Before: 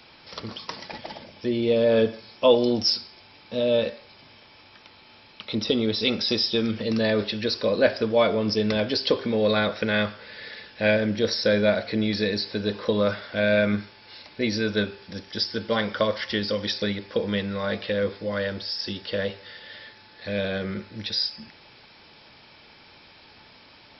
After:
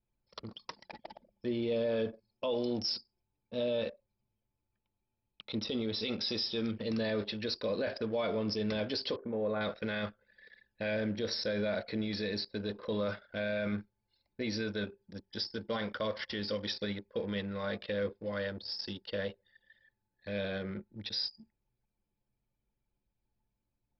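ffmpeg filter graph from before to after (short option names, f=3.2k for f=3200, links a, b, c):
-filter_complex "[0:a]asettb=1/sr,asplit=3[a][b][c];[a]atrim=end=9.164[d];[b]atrim=start=9.16:end=9.61,asetpts=PTS-STARTPTS,afade=t=in:d=0.004:c=qsin,afade=t=out:st=0.446:d=0.004:c=qsin,lowpass=1.2k,lowshelf=f=380:g=-5[e];[c]atrim=start=9.606[f];[d][e]acrossfade=d=0.004:c1=hsin:c2=qsin[g];[g][f]acrossfade=d=0.004:c1=qsin:c2=hsin,anlmdn=6.31,alimiter=limit=-16.5dB:level=0:latency=1:release=17,volume=-8.5dB"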